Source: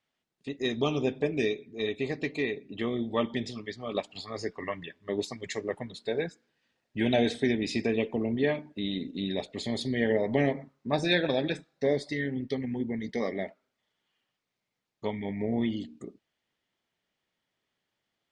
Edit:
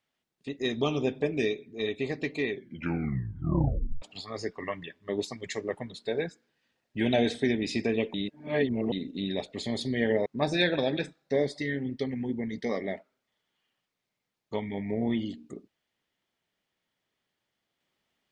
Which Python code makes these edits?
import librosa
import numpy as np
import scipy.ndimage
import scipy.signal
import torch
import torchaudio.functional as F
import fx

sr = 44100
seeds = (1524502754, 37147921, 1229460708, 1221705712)

y = fx.edit(x, sr, fx.tape_stop(start_s=2.48, length_s=1.54),
    fx.reverse_span(start_s=8.14, length_s=0.78),
    fx.cut(start_s=10.26, length_s=0.51), tone=tone)